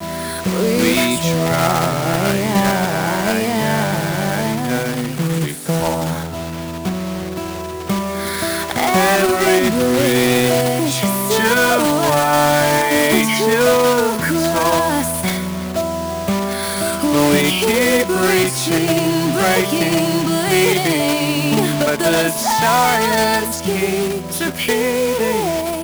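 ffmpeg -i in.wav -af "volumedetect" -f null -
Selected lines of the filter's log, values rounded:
mean_volume: -16.6 dB
max_volume: -3.0 dB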